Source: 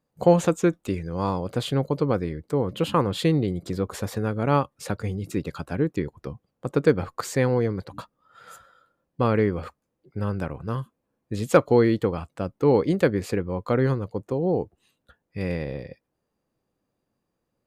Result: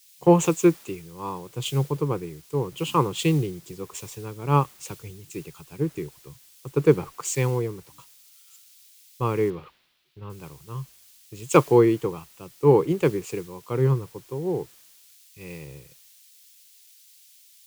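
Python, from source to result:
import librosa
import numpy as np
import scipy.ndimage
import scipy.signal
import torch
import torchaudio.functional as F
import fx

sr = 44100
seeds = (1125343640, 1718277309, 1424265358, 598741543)

p1 = fx.ripple_eq(x, sr, per_octave=0.71, db=11)
p2 = fx.quant_dither(p1, sr, seeds[0], bits=6, dither='triangular')
p3 = p1 + (p2 * librosa.db_to_amplitude(-4.5))
p4 = fx.high_shelf_res(p3, sr, hz=5100.0, db=-13.0, q=1.5, at=(9.5, 10.3))
p5 = fx.band_widen(p4, sr, depth_pct=100)
y = p5 * librosa.db_to_amplitude(-9.5)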